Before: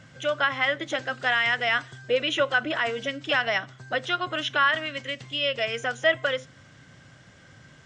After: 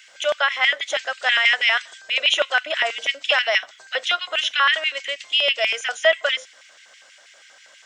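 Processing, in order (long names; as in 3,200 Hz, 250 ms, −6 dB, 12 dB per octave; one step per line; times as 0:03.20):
auto-filter high-pass square 6.2 Hz 600–2,300 Hz
spectral tilt +3.5 dB per octave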